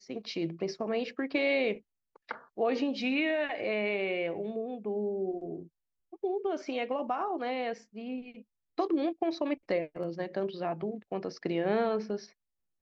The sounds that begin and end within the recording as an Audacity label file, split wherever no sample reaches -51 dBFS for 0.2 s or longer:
2.160000	5.670000	sound
6.130000	8.420000	sound
8.780000	12.300000	sound